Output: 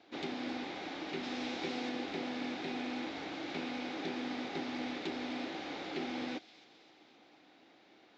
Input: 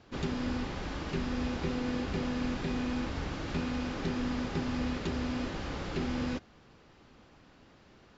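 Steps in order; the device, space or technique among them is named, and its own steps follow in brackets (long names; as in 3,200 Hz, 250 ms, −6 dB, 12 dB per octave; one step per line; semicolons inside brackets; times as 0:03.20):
full-range speaker at full volume (highs frequency-modulated by the lows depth 0.19 ms; loudspeaker in its box 290–6,700 Hz, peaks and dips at 310 Hz +9 dB, 750 Hz +8 dB, 1,100 Hz −4 dB, 2,200 Hz +7 dB, 3,700 Hz +8 dB)
0:01.23–0:01.89: high-shelf EQ 4,000 Hz +7.5 dB
delay with a high-pass on its return 263 ms, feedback 57%, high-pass 3,400 Hz, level −11.5 dB
level −5 dB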